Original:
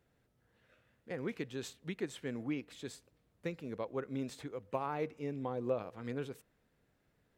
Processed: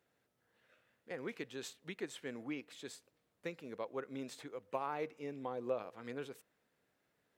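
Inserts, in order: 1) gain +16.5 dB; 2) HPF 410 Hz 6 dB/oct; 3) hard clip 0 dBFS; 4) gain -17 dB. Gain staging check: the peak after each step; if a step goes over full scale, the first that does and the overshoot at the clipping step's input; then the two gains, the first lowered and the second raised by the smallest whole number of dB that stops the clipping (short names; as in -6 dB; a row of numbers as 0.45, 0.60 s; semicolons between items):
-4.0, -5.5, -5.5, -22.5 dBFS; no overload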